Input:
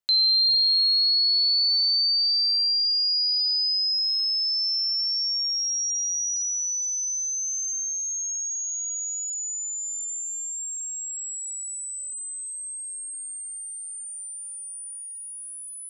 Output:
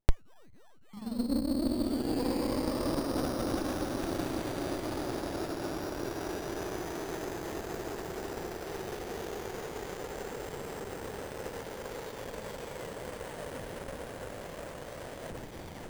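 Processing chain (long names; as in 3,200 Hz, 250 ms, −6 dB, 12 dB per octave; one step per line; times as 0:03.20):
turntable brake at the end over 0.61 s
parametric band 9,000 Hz +9.5 dB 1 octave
feedback delay with all-pass diffusion 1,145 ms, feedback 69%, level −16 dB
dynamic equaliser 4,000 Hz, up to +7 dB, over −35 dBFS, Q 5.2
windowed peak hold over 33 samples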